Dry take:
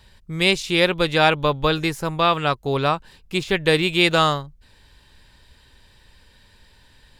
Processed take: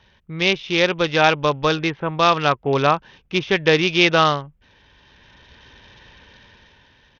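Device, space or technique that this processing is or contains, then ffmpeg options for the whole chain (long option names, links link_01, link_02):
Bluetooth headset: -af "highpass=frequency=130:poles=1,dynaudnorm=framelen=210:gausssize=9:maxgain=10dB,aresample=8000,aresample=44100" -ar 48000 -c:a sbc -b:a 64k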